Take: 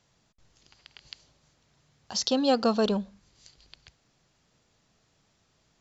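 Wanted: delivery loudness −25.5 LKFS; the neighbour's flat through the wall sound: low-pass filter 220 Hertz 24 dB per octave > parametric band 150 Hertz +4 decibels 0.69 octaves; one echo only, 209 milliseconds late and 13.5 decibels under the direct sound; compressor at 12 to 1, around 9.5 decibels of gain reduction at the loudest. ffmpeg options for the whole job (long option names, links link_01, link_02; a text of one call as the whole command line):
ffmpeg -i in.wav -af "acompressor=threshold=-29dB:ratio=12,lowpass=frequency=220:width=0.5412,lowpass=frequency=220:width=1.3066,equalizer=frequency=150:width_type=o:width=0.69:gain=4,aecho=1:1:209:0.211,volume=17dB" out.wav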